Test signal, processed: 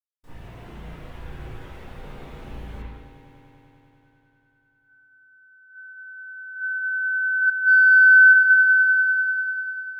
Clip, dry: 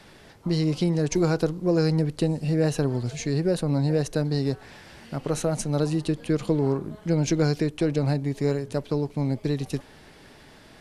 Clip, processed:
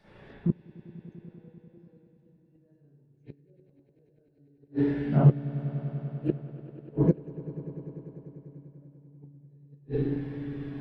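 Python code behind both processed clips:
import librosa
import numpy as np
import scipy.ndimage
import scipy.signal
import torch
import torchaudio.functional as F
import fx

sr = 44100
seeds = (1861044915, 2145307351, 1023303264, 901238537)

p1 = fx.rev_spring(x, sr, rt60_s=1.5, pass_ms=(35, 53), chirp_ms=55, drr_db=-9.0)
p2 = fx.gate_flip(p1, sr, shuts_db=-11.0, range_db=-38)
p3 = np.clip(p2, -10.0 ** (-19.0 / 20.0), 10.0 ** (-19.0 / 20.0))
p4 = p2 + (p3 * librosa.db_to_amplitude(-9.0))
p5 = fx.doubler(p4, sr, ms=14.0, db=-14.0)
p6 = p5 + fx.echo_swell(p5, sr, ms=98, loudest=5, wet_db=-14.5, dry=0)
y = fx.spectral_expand(p6, sr, expansion=1.5)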